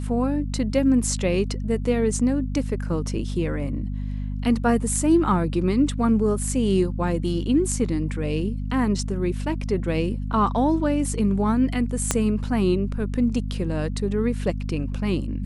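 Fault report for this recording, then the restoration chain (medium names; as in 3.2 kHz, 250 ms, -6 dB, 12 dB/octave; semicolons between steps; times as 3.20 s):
hum 50 Hz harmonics 5 -28 dBFS
12.11 s: pop -6 dBFS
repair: de-click; de-hum 50 Hz, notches 5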